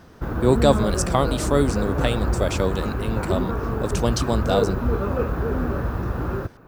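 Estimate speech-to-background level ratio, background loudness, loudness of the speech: 1.5 dB, -25.5 LUFS, -24.0 LUFS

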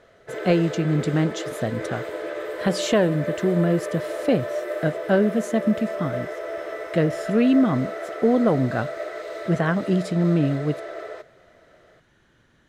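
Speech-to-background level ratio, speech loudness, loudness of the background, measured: 8.0 dB, -23.5 LUFS, -31.5 LUFS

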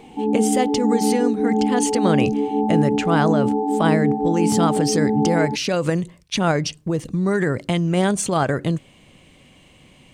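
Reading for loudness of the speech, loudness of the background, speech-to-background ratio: -22.0 LUFS, -21.0 LUFS, -1.0 dB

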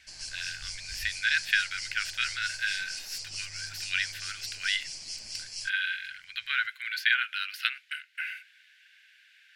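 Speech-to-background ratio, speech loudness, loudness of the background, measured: 6.5 dB, -31.0 LUFS, -37.5 LUFS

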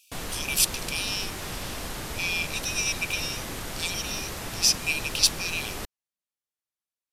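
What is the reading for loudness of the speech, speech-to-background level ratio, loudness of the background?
-26.5 LUFS, 8.0 dB, -34.5 LUFS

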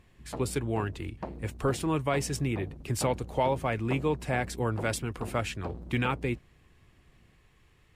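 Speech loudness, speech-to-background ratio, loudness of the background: -31.5 LUFS, 12.0 dB, -43.5 LUFS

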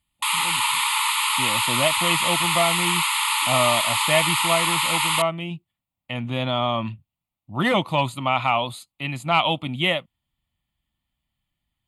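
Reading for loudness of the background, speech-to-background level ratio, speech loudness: -20.5 LUFS, -4.0 dB, -24.5 LUFS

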